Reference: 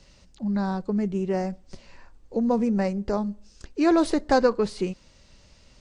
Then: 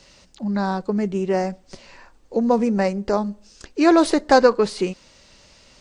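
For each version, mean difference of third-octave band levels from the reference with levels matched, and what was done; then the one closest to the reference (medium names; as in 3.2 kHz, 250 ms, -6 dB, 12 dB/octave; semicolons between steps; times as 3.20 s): 2.0 dB: bass shelf 190 Hz -11.5 dB; trim +7.5 dB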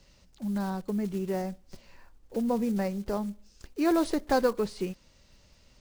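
4.0 dB: block-companded coder 5-bit; trim -5 dB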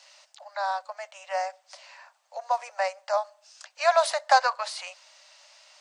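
12.5 dB: steep high-pass 590 Hz 96 dB/octave; trim +5.5 dB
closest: first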